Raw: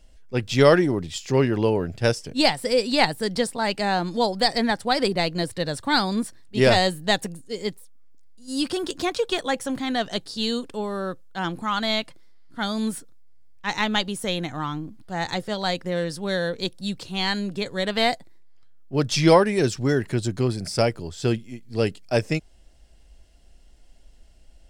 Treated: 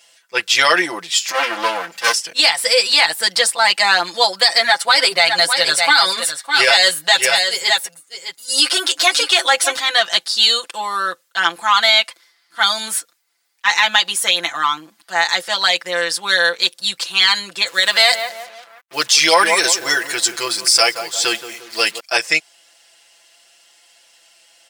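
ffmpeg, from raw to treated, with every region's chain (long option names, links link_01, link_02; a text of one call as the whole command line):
ffmpeg -i in.wav -filter_complex "[0:a]asettb=1/sr,asplit=3[link_01][link_02][link_03];[link_01]atrim=end=1.284[link_04];[link_02]atrim=start=1.28:end=2.14,asetpts=PTS-STARTPTS,afade=type=in:duration=0.004:curve=qsin,afade=type=out:start_time=0.856:duration=0.004:curve=qsin,lowshelf=frequency=110:width_type=q:width=3:gain=-8,aecho=1:1:3.8:0.8,atrim=end_sample=37926,aeval=exprs='max(val(0),0)':channel_layout=same[link_05];[link_03]atrim=start=2.136[link_06];[link_04][link_05]acrossfade=duration=0.004:curve1=hsin:curve2=qsin[link_07];[link_07][link_06]acrossfade=duration=0.004:curve1=qsin:curve2=hsin,asettb=1/sr,asplit=3[link_08][link_09][link_10];[link_08]atrim=end=4.594[link_11];[link_09]atrim=start=4.59:end=9.8,asetpts=PTS-STARTPTS,afade=type=in:duration=0.004:curve=qsin,afade=type=out:start_time=5.206:duration=0.004:curve=qsin,aecho=1:1:7.3:0.87,atrim=end_sample=229761,aecho=1:1:608:0.299,atrim=end_sample=229761[link_12];[link_10]atrim=start=9.796[link_13];[link_11][link_12]acrossfade=duration=0.004:curve1=hsin:curve2=qsin[link_14];[link_14][link_13]acrossfade=duration=0.004:curve1=qsin:curve2=hsin,asettb=1/sr,asplit=3[link_15][link_16][link_17];[link_15]atrim=end=17.674[link_18];[link_16]atrim=start=17.67:end=22,asetpts=PTS-STARTPTS,afade=type=in:duration=0.004:curve=qsin,afade=type=out:start_time=4.326:duration=0.004:curve=qsin,bass=frequency=250:gain=-2,treble=frequency=4000:gain=5,asplit=2[link_19][link_20];[link_20]adelay=174,lowpass=frequency=1200:poles=1,volume=-10dB,asplit=2[link_21][link_22];[link_22]adelay=174,lowpass=frequency=1200:poles=1,volume=0.5,asplit=2[link_23][link_24];[link_24]adelay=174,lowpass=frequency=1200:poles=1,volume=0.5,asplit=2[link_25][link_26];[link_26]adelay=174,lowpass=frequency=1200:poles=1,volume=0.5,asplit=2[link_27][link_28];[link_28]adelay=174,lowpass=frequency=1200:poles=1,volume=0.5[link_29];[link_19][link_21][link_23][link_25][link_27][link_29]amix=inputs=6:normalize=0,atrim=end_sample=190953,acrusher=bits=7:mix=0:aa=0.5[link_30];[link_17]atrim=start=21.996[link_31];[link_18][link_30]acrossfade=duration=0.004:curve1=hsin:curve2=qsin[link_32];[link_32][link_31]acrossfade=duration=0.004:curve1=qsin:curve2=hsin,highpass=1200,aecho=1:1:5.9:0.96,alimiter=level_in=14.5dB:limit=-1dB:release=50:level=0:latency=1,volume=-1dB" out.wav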